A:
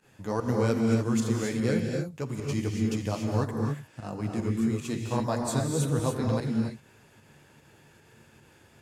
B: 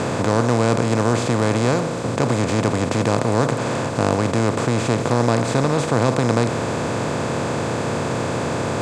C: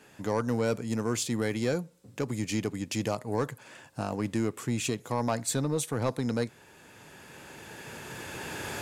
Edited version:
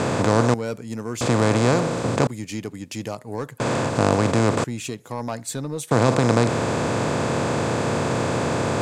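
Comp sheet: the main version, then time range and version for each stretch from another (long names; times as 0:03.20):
B
0:00.54–0:01.21: punch in from C
0:02.27–0:03.60: punch in from C
0:04.64–0:05.91: punch in from C
not used: A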